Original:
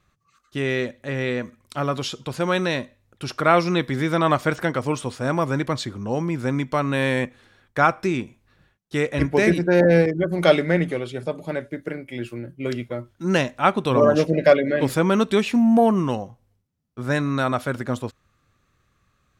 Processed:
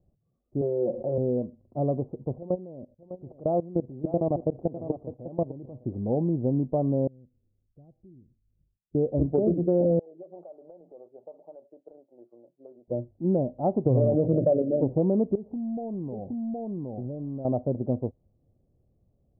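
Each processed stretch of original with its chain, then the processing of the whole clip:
0.61–1.18 tilt +4 dB/oct + comb 5.7 ms, depth 74% + fast leveller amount 70%
2.38–5.84 level quantiser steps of 20 dB + echo 0.603 s -13 dB
7.07–8.95 passive tone stack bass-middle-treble 10-0-1 + compressor 2:1, threshold -56 dBFS
9.99–12.88 HPF 1100 Hz + compressor 12:1, threshold -35 dBFS
13.86–14.62 bell 120 Hz +14.5 dB 0.22 oct + fast leveller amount 50%
15.35–17.45 echo 0.768 s -8 dB + compressor 20:1, threshold -28 dBFS + overloaded stage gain 28 dB
whole clip: steep low-pass 730 Hz 48 dB/oct; compressor 4:1, threshold -20 dBFS

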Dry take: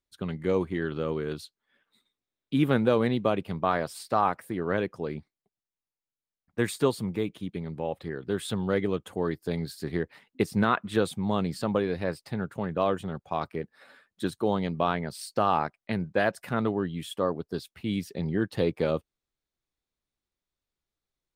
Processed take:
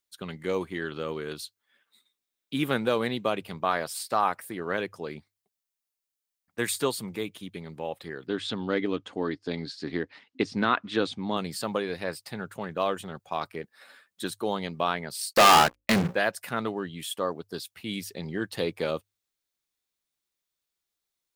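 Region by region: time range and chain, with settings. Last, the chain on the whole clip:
8.27–11.37 LPF 5500 Hz 24 dB/oct + bell 280 Hz +10 dB 0.4 oct
15.33–16.15 notches 60/120/180/240/300/360/420/480/540 Hz + sample leveller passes 5 + upward expander, over -34 dBFS
whole clip: tilt +2.5 dB/oct; notches 50/100 Hz

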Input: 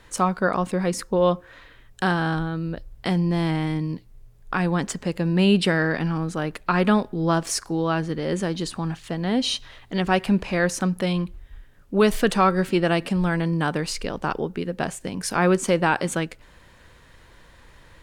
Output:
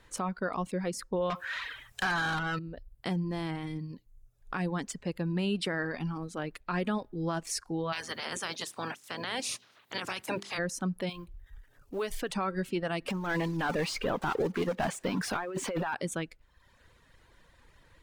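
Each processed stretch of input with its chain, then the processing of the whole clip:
1.3–2.59 bell 330 Hz -11 dB 2 oct + compressor, threshold -30 dBFS + overdrive pedal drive 31 dB, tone 4100 Hz, clips at -12 dBFS
7.92–10.57 spectral limiter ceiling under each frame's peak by 27 dB + HPF 100 Hz 24 dB/oct + notches 50/100/150/200/250/300/350/400 Hz
11.09–12.33 G.711 law mismatch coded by mu + bell 200 Hz -13.5 dB 0.3 oct + compressor 2.5:1, threshold -23 dBFS
13.08–15.94 block floating point 5-bit + negative-ratio compressor -25 dBFS, ratio -0.5 + overdrive pedal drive 24 dB, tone 1600 Hz, clips at -11 dBFS
whole clip: reverb removal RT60 0.82 s; limiter -14.5 dBFS; gain -8 dB

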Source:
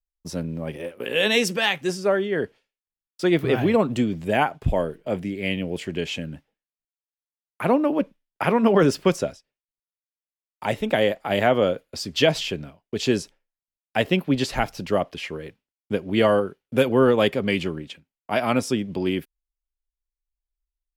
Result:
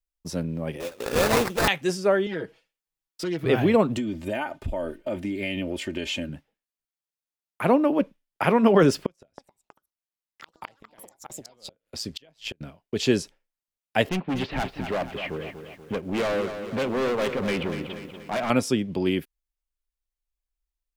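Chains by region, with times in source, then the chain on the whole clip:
0.8–1.68 LPF 5800 Hz 24 dB/oct + bell 160 Hz -6.5 dB 1.5 oct + sample-rate reducer 3100 Hz, jitter 20%
2.26–3.46 self-modulated delay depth 0.13 ms + comb 6.2 ms, depth 94% + compressor 3:1, threshold -29 dBFS
3.97–6.29 comb 3.3 ms, depth 71% + compressor 10:1, threshold -24 dBFS
9.06–12.61 flipped gate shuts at -18 dBFS, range -36 dB + AM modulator 110 Hz, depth 35% + echoes that change speed 0.321 s, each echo +7 st, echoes 2, each echo -6 dB
14.09–18.5 LPF 3200 Hz 24 dB/oct + hard clip -23.5 dBFS + lo-fi delay 0.24 s, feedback 55%, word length 9-bit, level -9 dB
whole clip: dry

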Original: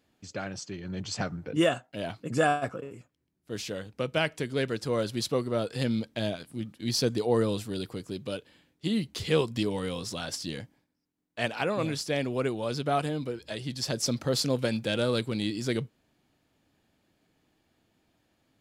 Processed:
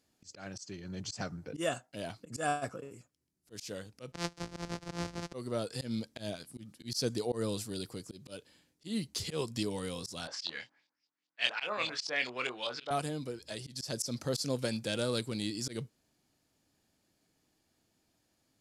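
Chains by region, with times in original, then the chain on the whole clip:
4.12–5.34 sample sorter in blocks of 256 samples + LPF 4900 Hz + three-band expander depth 100%
10.27–12.91 weighting filter ITU-R 468 + LFO low-pass saw up 5 Hz 830–4000 Hz + doubler 24 ms -7 dB
whole clip: band shelf 7400 Hz +9.5 dB; auto swell 0.125 s; gain -6 dB

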